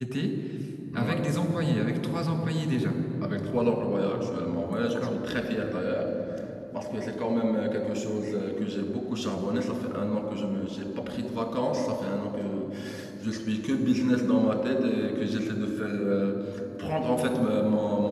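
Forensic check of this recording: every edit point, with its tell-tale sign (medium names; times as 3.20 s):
no edits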